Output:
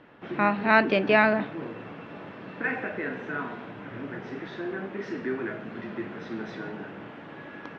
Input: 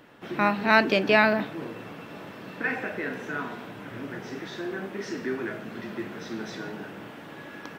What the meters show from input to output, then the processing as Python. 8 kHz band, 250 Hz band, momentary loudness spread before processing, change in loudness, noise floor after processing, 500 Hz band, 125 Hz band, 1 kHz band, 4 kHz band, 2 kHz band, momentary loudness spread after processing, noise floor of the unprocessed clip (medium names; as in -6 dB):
under -10 dB, 0.0 dB, 21 LU, -0.5 dB, -44 dBFS, 0.0 dB, 0.0 dB, 0.0 dB, -5.0 dB, -0.5 dB, 21 LU, -43 dBFS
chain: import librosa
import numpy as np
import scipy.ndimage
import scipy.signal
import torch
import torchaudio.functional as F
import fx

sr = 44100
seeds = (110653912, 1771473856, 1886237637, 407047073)

y = scipy.signal.sosfilt(scipy.signal.butter(2, 2800.0, 'lowpass', fs=sr, output='sos'), x)